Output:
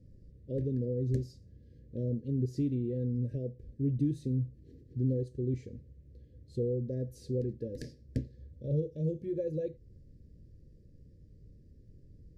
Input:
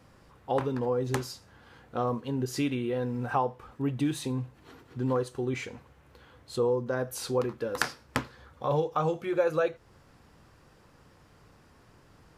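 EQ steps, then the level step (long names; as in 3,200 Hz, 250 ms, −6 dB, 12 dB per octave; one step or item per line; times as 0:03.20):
linear-phase brick-wall band-stop 650–1,600 Hz
RIAA equalisation playback
flat-topped bell 1,500 Hz −15 dB 2.6 octaves
−8.5 dB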